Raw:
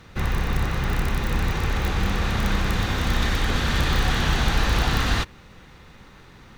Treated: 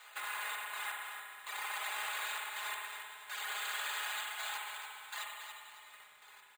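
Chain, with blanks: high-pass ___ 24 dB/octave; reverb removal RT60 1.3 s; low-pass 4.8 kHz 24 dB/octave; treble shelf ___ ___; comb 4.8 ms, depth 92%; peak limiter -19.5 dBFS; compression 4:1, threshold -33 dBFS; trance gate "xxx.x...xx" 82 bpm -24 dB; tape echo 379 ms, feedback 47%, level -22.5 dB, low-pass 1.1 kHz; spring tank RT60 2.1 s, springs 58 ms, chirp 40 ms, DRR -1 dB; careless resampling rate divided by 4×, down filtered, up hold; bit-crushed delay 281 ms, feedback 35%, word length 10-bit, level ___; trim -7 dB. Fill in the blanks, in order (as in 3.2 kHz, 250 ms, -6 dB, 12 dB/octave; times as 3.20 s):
730 Hz, 2.4 kHz, +5.5 dB, -8 dB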